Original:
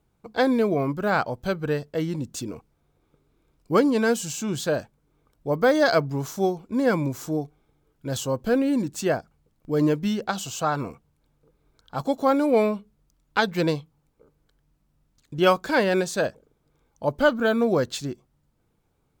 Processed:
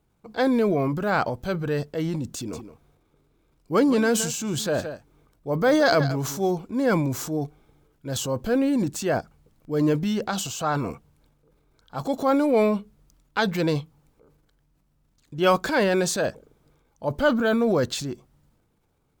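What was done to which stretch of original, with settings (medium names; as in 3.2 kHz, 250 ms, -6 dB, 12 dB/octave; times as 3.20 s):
2.36–6.51 s: delay 169 ms -16.5 dB
whole clip: transient shaper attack -3 dB, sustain +7 dB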